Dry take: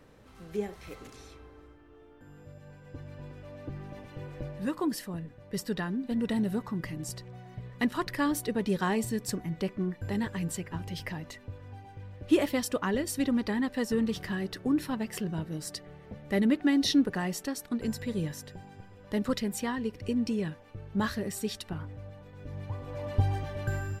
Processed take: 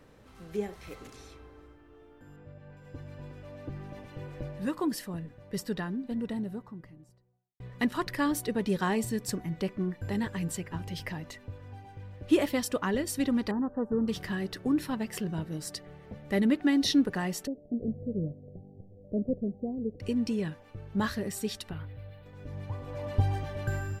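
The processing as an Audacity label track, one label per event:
2.360000	2.770000	low-pass filter 3,100 Hz
5.330000	7.600000	fade out and dull
13.510000	14.080000	elliptic low-pass filter 1,400 Hz
17.470000	20.000000	Chebyshev low-pass filter 690 Hz, order 6
21.710000	22.260000	drawn EQ curve 130 Hz 0 dB, 230 Hz −9 dB, 470 Hz −2 dB, 1,000 Hz −6 dB, 2,000 Hz +2 dB, 4,100 Hz +3 dB, 6,300 Hz −18 dB, 14,000 Hz +5 dB

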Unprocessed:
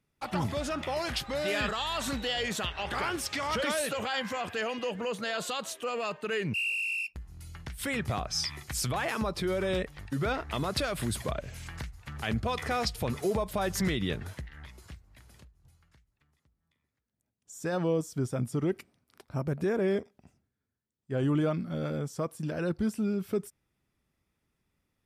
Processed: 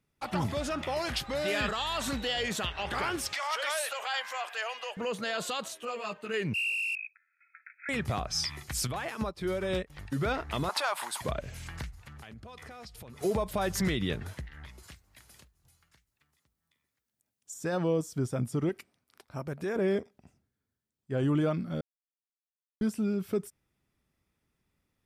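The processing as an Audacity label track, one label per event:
3.330000	4.970000	high-pass filter 640 Hz 24 dB per octave
5.680000	6.340000	string-ensemble chorus
6.950000	7.890000	linear-phase brick-wall band-pass 1,300–2,600 Hz
8.870000	9.900000	expander for the loud parts 2.5 to 1, over −40 dBFS
10.690000	11.210000	high-pass with resonance 900 Hz, resonance Q 6.8
11.940000	13.210000	downward compressor 8 to 1, threshold −44 dBFS
14.830000	17.540000	spectral tilt +2 dB per octave
18.690000	19.760000	low-shelf EQ 480 Hz −7.5 dB
21.810000	22.810000	silence

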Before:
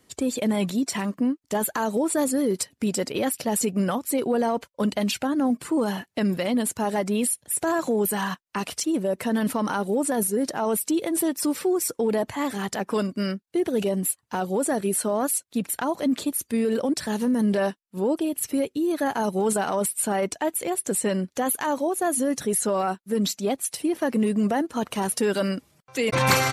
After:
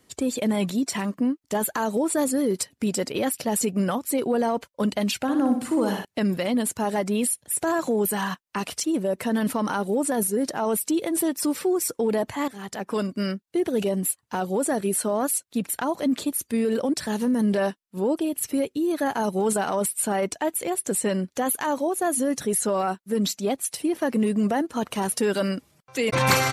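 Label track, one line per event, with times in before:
5.220000	6.050000	flutter between parallel walls apart 10.2 metres, dies away in 0.52 s
12.480000	13.300000	fade in equal-power, from −13.5 dB

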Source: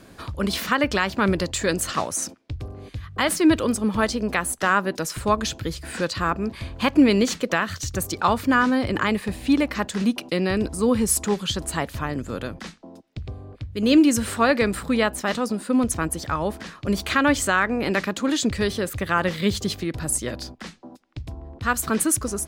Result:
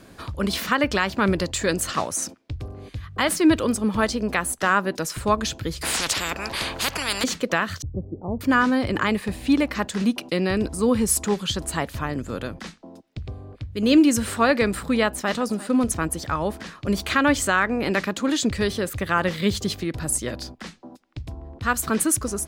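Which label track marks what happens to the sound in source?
5.810000	7.240000	every bin compressed towards the loudest bin 10 to 1
7.820000	8.410000	Gaussian smoothing sigma 16 samples
15.050000	15.570000	delay throw 350 ms, feedback 10%, level −17 dB

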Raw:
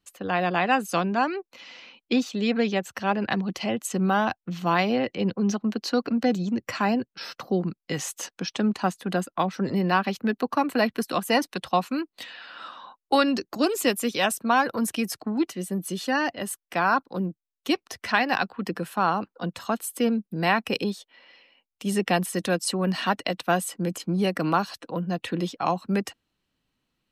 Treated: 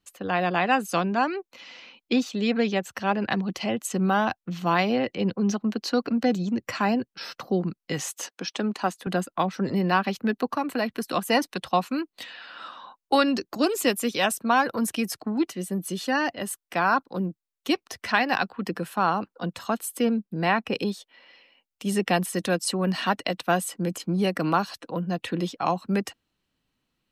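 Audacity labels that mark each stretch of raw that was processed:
8.100000	9.070000	high-pass filter 240 Hz
10.560000	11.050000	downward compressor 1.5 to 1, threshold −28 dBFS
20.010000	20.770000	low-pass filter 5,400 Hz → 2,400 Hz 6 dB per octave

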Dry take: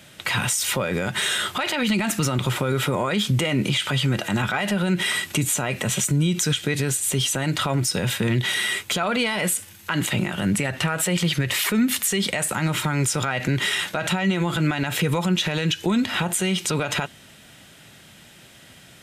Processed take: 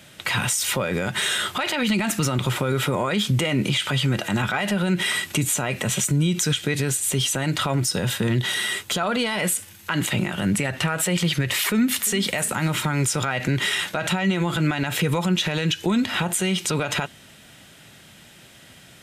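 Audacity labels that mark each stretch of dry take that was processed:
7.850000	9.320000	parametric band 2,300 Hz −6 dB 0.31 octaves
11.570000	12.130000	delay throw 350 ms, feedback 45%, level −17.5 dB

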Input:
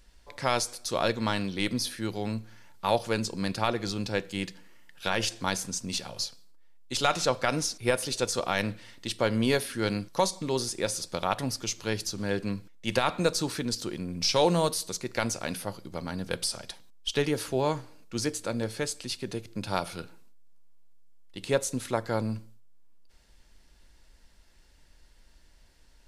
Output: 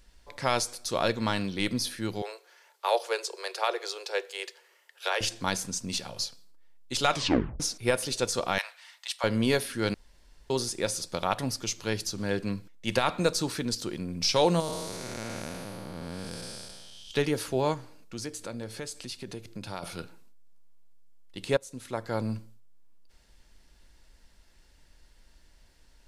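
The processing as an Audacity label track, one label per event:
2.220000	5.210000	Butterworth high-pass 370 Hz 96 dB per octave
7.120000	7.120000	tape stop 0.48 s
8.580000	9.240000	Butterworth high-pass 740 Hz
9.940000	10.500000	fill with room tone
14.600000	17.110000	spectrum smeared in time width 449 ms
17.740000	19.830000	downward compressor 2 to 1, threshold −38 dBFS
21.570000	22.310000	fade in, from −19.5 dB

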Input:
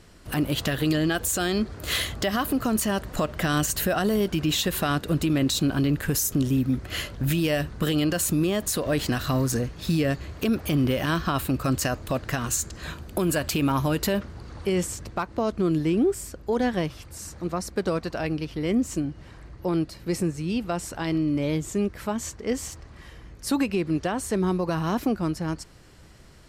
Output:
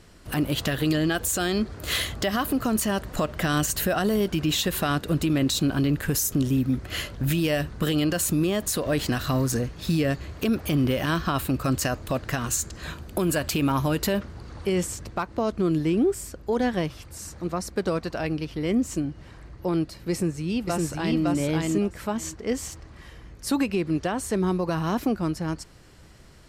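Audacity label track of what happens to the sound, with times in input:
20.110000	21.220000	delay throw 560 ms, feedback 15%, level −1.5 dB

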